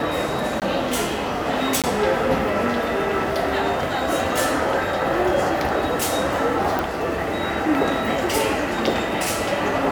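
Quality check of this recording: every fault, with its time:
0.6–0.62 gap 18 ms
1.82–1.84 gap 17 ms
6.79 pop

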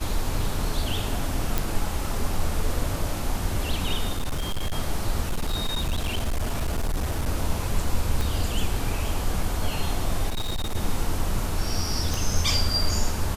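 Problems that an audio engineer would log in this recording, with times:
1.58 pop
4.14–4.73 clipped -22.5 dBFS
5.24–7.28 clipped -21 dBFS
8.21 pop
10.29–10.76 clipped -23.5 dBFS
12.14 pop

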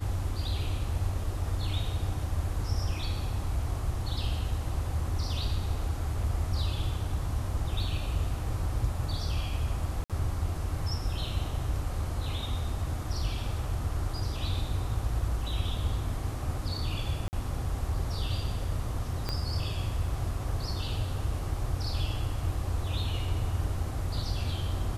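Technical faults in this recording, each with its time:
10.04–10.1 gap 57 ms
17.28–17.33 gap 49 ms
19.29 pop -17 dBFS

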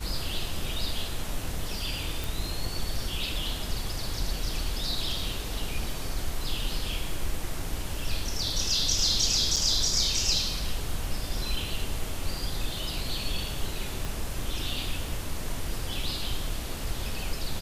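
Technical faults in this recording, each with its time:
2.24 pop
9.56–9.57 gap 6.3 ms
14.05 pop

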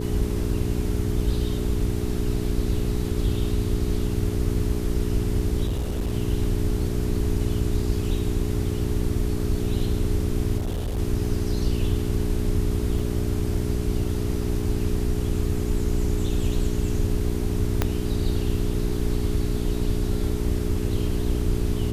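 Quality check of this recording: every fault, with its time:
hum 60 Hz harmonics 7 -28 dBFS
5.66–6.14 clipped -22 dBFS
10.57–10.98 clipped -23.5 dBFS
12.99 gap 2.3 ms
17.82 pop -7 dBFS

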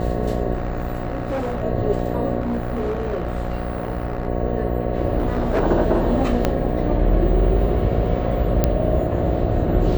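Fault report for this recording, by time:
buzz 60 Hz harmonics 12 -24 dBFS
0.53–1.64 clipped -20 dBFS
2.4–4.27 clipped -19.5 dBFS
5.18–5.62 clipped -15.5 dBFS
6.45 pop -5 dBFS
8.64 pop -4 dBFS

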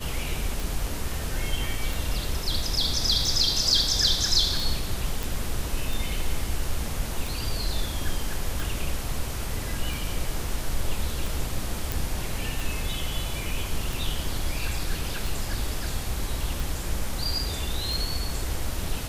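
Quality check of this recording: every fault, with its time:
tick 45 rpm
5.23 pop
11.92 pop

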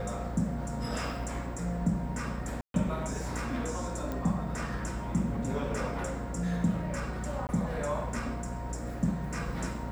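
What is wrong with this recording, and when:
buzz 60 Hz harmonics 14 -38 dBFS
2.61–2.74 gap 0.132 s
4.12 pop -22 dBFS
7.47–7.49 gap 19 ms

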